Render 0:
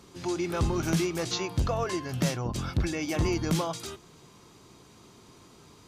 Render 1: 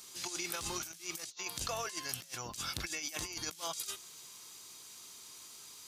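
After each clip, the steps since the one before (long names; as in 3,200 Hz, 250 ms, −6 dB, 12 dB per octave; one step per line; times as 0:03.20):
first-order pre-emphasis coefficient 0.97
compressor whose output falls as the input rises −47 dBFS, ratio −0.5
level +7 dB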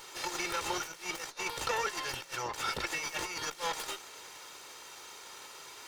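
lower of the sound and its delayed copy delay 2.2 ms
mid-hump overdrive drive 21 dB, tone 1,400 Hz, clips at −13.5 dBFS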